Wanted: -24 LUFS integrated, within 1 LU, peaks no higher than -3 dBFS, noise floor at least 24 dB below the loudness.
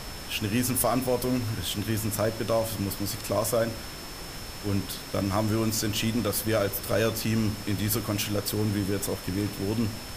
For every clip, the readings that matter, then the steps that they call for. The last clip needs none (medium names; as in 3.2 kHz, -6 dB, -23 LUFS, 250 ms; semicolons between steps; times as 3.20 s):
steady tone 5.3 kHz; tone level -45 dBFS; noise floor -39 dBFS; noise floor target -52 dBFS; loudness -28.0 LUFS; peak level -12.0 dBFS; loudness target -24.0 LUFS
-> band-stop 5.3 kHz, Q 30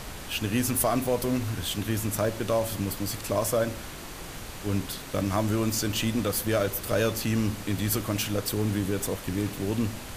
steady tone not found; noise floor -40 dBFS; noise floor target -52 dBFS
-> noise print and reduce 12 dB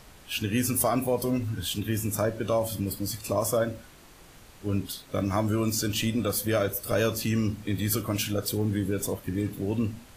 noise floor -52 dBFS; loudness -28.0 LUFS; peak level -13.0 dBFS; loudness target -24.0 LUFS
-> trim +4 dB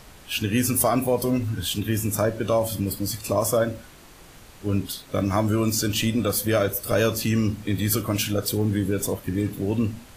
loudness -24.0 LUFS; peak level -9.0 dBFS; noise floor -48 dBFS